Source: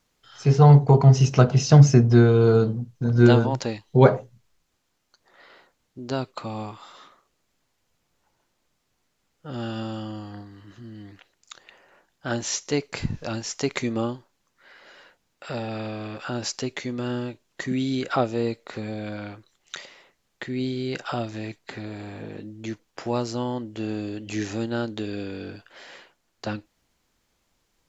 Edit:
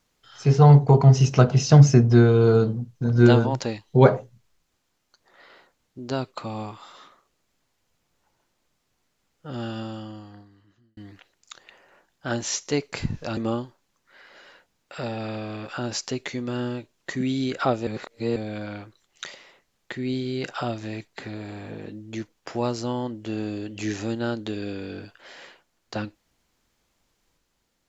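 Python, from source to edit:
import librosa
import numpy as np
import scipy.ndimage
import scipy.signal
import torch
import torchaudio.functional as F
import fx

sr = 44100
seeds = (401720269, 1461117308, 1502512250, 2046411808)

y = fx.edit(x, sr, fx.fade_out_span(start_s=9.55, length_s=1.42),
    fx.cut(start_s=13.37, length_s=0.51),
    fx.reverse_span(start_s=18.38, length_s=0.49), tone=tone)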